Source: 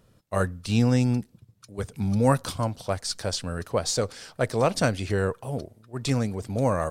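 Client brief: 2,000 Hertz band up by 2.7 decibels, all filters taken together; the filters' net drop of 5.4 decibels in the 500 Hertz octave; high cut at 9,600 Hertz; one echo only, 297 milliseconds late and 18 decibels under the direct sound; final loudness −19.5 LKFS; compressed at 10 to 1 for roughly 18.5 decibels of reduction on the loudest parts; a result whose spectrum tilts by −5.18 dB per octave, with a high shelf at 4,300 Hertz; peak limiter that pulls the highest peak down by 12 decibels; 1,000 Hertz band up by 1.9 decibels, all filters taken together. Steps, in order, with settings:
low-pass filter 9,600 Hz
parametric band 500 Hz −7.5 dB
parametric band 1,000 Hz +4 dB
parametric band 2,000 Hz +4 dB
high-shelf EQ 4,300 Hz −7 dB
downward compressor 10 to 1, threshold −36 dBFS
brickwall limiter −33 dBFS
single-tap delay 297 ms −18 dB
level +24.5 dB

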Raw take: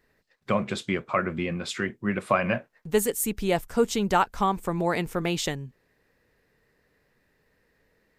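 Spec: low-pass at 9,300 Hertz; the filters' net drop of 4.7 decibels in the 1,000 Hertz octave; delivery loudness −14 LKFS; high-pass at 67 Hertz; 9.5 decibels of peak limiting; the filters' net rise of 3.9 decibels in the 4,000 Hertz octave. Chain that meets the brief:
high-pass filter 67 Hz
low-pass filter 9,300 Hz
parametric band 1,000 Hz −6.5 dB
parametric band 4,000 Hz +5.5 dB
level +17.5 dB
brickwall limiter −2.5 dBFS

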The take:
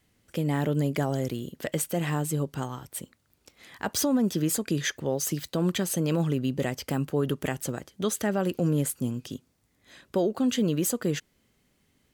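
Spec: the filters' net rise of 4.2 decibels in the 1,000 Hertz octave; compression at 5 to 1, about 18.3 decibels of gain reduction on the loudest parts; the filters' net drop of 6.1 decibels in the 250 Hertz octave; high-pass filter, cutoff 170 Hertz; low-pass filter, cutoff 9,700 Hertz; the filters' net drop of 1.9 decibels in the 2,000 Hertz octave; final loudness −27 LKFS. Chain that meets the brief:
high-pass filter 170 Hz
low-pass filter 9,700 Hz
parametric band 250 Hz −7 dB
parametric band 1,000 Hz +7 dB
parametric band 2,000 Hz −4.5 dB
downward compressor 5 to 1, threshold −44 dBFS
level +20 dB

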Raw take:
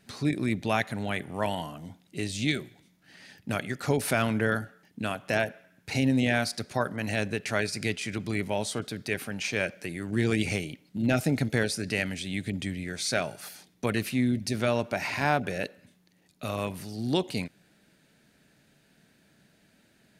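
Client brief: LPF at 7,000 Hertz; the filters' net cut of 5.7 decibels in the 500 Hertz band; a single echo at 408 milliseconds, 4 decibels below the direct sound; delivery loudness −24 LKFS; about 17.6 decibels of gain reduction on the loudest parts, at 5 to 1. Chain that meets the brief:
low-pass filter 7,000 Hz
parametric band 500 Hz −7.5 dB
downward compressor 5 to 1, threshold −43 dBFS
single-tap delay 408 ms −4 dB
level +20.5 dB

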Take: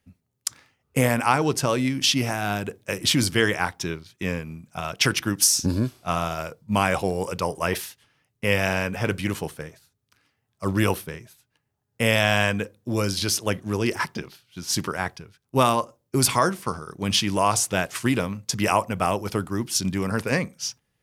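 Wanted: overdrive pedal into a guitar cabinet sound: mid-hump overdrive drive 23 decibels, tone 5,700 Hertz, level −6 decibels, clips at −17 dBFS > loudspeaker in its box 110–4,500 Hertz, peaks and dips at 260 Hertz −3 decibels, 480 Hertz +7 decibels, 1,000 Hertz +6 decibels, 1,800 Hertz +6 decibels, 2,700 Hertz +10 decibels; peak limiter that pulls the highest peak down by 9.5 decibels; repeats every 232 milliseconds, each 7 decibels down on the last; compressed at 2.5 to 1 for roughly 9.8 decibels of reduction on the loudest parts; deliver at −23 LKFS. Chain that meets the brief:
downward compressor 2.5 to 1, threshold −30 dBFS
brickwall limiter −20.5 dBFS
repeating echo 232 ms, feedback 45%, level −7 dB
mid-hump overdrive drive 23 dB, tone 5,700 Hz, level −6 dB, clips at −17 dBFS
loudspeaker in its box 110–4,500 Hz, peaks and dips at 260 Hz −3 dB, 480 Hz +7 dB, 1,000 Hz +6 dB, 1,800 Hz +6 dB, 2,700 Hz +10 dB
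level −0.5 dB

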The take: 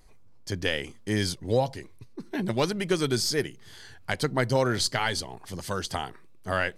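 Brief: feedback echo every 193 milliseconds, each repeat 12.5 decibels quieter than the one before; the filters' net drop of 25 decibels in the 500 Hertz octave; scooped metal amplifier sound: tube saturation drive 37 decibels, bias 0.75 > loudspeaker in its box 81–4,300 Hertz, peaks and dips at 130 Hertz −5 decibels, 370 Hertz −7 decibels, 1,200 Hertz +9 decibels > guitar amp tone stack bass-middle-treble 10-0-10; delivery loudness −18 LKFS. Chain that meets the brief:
parametric band 500 Hz −7.5 dB
repeating echo 193 ms, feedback 24%, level −12.5 dB
tube saturation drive 37 dB, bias 0.75
loudspeaker in its box 81–4,300 Hz, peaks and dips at 130 Hz −5 dB, 370 Hz −7 dB, 1,200 Hz +9 dB
guitar amp tone stack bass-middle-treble 10-0-10
level +30 dB

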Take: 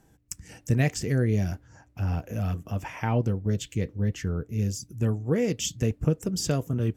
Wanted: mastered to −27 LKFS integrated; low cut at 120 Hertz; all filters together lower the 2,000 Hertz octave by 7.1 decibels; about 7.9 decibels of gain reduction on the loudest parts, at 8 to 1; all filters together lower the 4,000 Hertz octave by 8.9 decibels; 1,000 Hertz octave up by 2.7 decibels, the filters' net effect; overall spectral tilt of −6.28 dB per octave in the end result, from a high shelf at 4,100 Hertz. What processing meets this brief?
high-pass filter 120 Hz
parametric band 1,000 Hz +6 dB
parametric band 2,000 Hz −8 dB
parametric band 4,000 Hz −5.5 dB
high-shelf EQ 4,100 Hz −7 dB
downward compressor 8 to 1, threshold −27 dBFS
level +7.5 dB

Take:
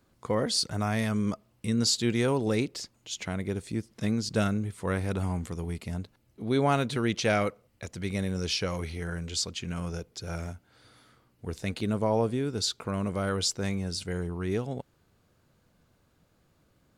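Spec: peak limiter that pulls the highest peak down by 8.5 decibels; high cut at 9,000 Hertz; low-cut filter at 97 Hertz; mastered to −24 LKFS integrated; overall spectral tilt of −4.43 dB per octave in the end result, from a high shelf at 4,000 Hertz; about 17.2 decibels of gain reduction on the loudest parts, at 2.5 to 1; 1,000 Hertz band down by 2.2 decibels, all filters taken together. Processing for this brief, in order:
high-pass filter 97 Hz
low-pass filter 9,000 Hz
parametric band 1,000 Hz −3.5 dB
high-shelf EQ 4,000 Hz +5.5 dB
downward compressor 2.5 to 1, threshold −48 dBFS
level +23.5 dB
brickwall limiter −12.5 dBFS

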